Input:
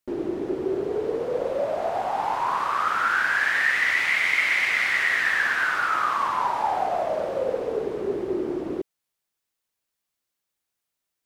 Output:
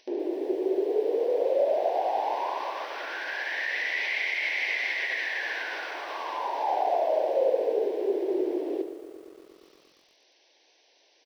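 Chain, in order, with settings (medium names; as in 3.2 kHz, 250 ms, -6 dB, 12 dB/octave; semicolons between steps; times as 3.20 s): upward compressor, threshold -32 dBFS; distance through air 95 m; peak limiter -17 dBFS, peak gain reduction 6.5 dB; brick-wall FIR band-pass 220–6200 Hz; static phaser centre 530 Hz, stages 4; feedback delay 74 ms, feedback 50%, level -11 dB; bit-crushed delay 118 ms, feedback 80%, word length 9-bit, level -14.5 dB; trim +1.5 dB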